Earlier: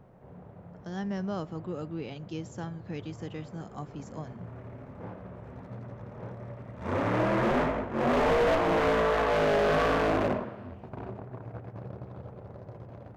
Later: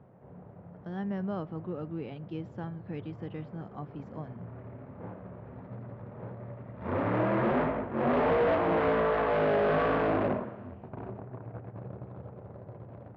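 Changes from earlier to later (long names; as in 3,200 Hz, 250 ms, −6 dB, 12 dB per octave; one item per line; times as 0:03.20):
background: add high-pass filter 76 Hz
master: add high-frequency loss of the air 380 metres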